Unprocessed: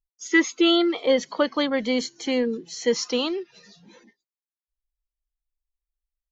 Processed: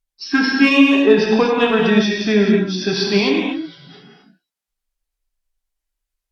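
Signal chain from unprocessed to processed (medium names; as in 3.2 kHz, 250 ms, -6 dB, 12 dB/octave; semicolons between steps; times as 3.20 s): rotating-head pitch shifter -3.5 st; Chebyshev shaper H 5 -27 dB, 6 -44 dB, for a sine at -9 dBFS; gated-style reverb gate 290 ms flat, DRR -1 dB; trim +5.5 dB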